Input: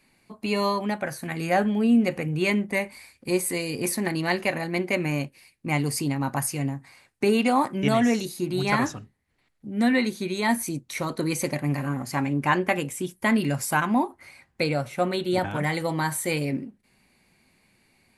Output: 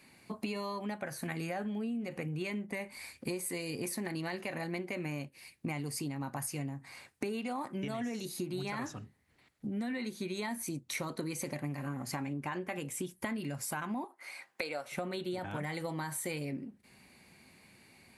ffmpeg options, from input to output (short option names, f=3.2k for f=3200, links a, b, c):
-filter_complex "[0:a]asettb=1/sr,asplit=3[a][b][c];[a]atrim=end=14.044[d];[b]atrim=start=14.04:end=14.92,asetpts=PTS-STARTPTS,afade=t=in:d=0.004:c=qsin,afade=t=out:st=0.876:d=0.004:c=qsin,highpass=500[e];[c]atrim=start=14.916[f];[d][e]acrossfade=d=0.004:c1=hsin:c2=qsin[g];[g][f]acrossfade=d=0.004:c1=qsin:c2=hsin,highpass=60,alimiter=limit=-15.5dB:level=0:latency=1:release=33,acompressor=threshold=-38dB:ratio=10,volume=3.5dB"